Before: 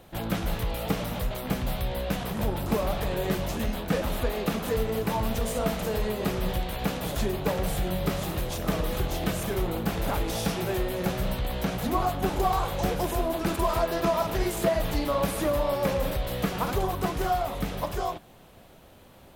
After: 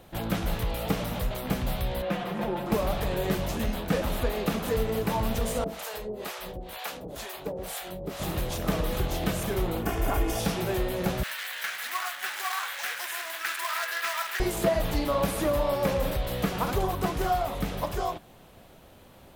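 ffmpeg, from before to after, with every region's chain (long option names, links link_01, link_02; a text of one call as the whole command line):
ffmpeg -i in.wav -filter_complex "[0:a]asettb=1/sr,asplit=3[link_01][link_02][link_03];[link_01]atrim=end=2.024[link_04];[link_02]atrim=start=2.02:end=2.72,asetpts=PTS-STARTPTS,afade=type=in:duration=0.004:curve=qsin,afade=type=out:start_time=0.696:duration=0.004:curve=qsin,acrossover=split=180 3400:gain=0.158 1 0.224[link_05][link_06][link_07];[link_05][link_06][link_07]amix=inputs=3:normalize=0,aecho=1:1:5.7:0.69,atrim=end_sample=30870[link_08];[link_03]atrim=start=2.716[link_09];[link_04][link_08]acrossfade=duration=0.004:curve1=hsin:curve2=qsin[link_10];[link_10][link_09]acrossfade=duration=0.004:curve1=qsin:curve2=hsin,asettb=1/sr,asplit=3[link_11][link_12][link_13];[link_11]atrim=end=5.644[link_14];[link_12]atrim=start=5.64:end=8.2,asetpts=PTS-STARTPTS,afade=type=in:duration=0.004:curve=qsin,afade=type=out:start_time=2.556:duration=0.004:curve=qsin,bass=frequency=250:gain=-11,treble=frequency=4000:gain=2,acrossover=split=610[link_15][link_16];[link_15]aeval=exprs='val(0)*(1-1/2+1/2*cos(2*PI*2.1*n/s))':channel_layout=same[link_17];[link_16]aeval=exprs='val(0)*(1-1/2-1/2*cos(2*PI*2.1*n/s))':channel_layout=same[link_18];[link_17][link_18]amix=inputs=2:normalize=0[link_19];[link_13]atrim=start=8.196[link_20];[link_14][link_19]acrossfade=duration=0.004:curve1=hsin:curve2=qsin[link_21];[link_21][link_20]acrossfade=duration=0.004:curve1=qsin:curve2=hsin,asettb=1/sr,asplit=3[link_22][link_23][link_24];[link_22]atrim=end=9.824[link_25];[link_23]atrim=start=9.82:end=10.4,asetpts=PTS-STARTPTS,afade=type=in:duration=0.004:curve=qsin,afade=type=out:start_time=0.576:duration=0.004:curve=qsin,equalizer=frequency=4000:width_type=o:width=0.38:gain=-12.5,aecho=1:1:2.8:0.59,atrim=end_sample=25578[link_26];[link_24]atrim=start=10.396[link_27];[link_25][link_26]acrossfade=duration=0.004:curve1=hsin:curve2=qsin[link_28];[link_28][link_27]acrossfade=duration=0.004:curve1=qsin:curve2=hsin,asettb=1/sr,asplit=3[link_29][link_30][link_31];[link_29]atrim=end=11.234[link_32];[link_30]atrim=start=11.23:end=14.4,asetpts=PTS-STARTPTS,afade=type=in:duration=0.004:curve=qsin,afade=type=out:start_time=3.166:duration=0.004:curve=qsin,acrusher=bits=3:mode=log:mix=0:aa=0.000001,highpass=frequency=1700:width_type=q:width=2.8[link_33];[link_31]atrim=start=14.396[link_34];[link_32][link_33]acrossfade=duration=0.004:curve1=hsin:curve2=qsin[link_35];[link_35][link_34]acrossfade=duration=0.004:curve1=qsin:curve2=hsin" out.wav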